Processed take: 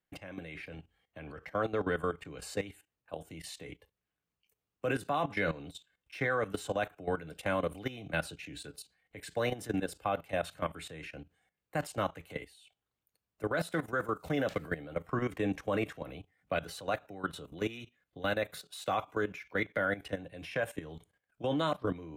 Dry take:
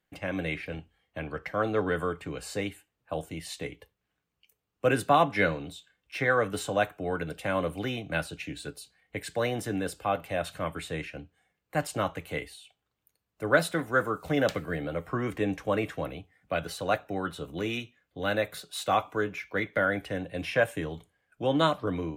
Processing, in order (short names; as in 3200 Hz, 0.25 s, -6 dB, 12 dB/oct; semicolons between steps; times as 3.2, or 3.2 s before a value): level quantiser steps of 15 dB